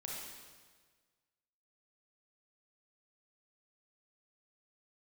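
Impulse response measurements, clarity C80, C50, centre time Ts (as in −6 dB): 1.5 dB, −1.5 dB, 93 ms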